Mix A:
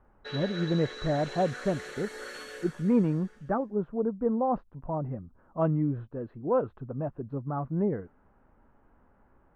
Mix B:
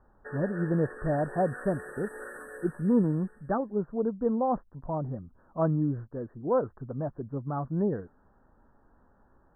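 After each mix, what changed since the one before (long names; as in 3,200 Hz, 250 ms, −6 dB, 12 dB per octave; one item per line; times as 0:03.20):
master: add linear-phase brick-wall band-stop 1,900–7,800 Hz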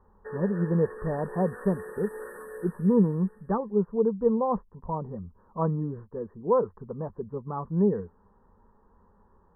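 master: add EQ curve with evenly spaced ripples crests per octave 0.84, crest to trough 12 dB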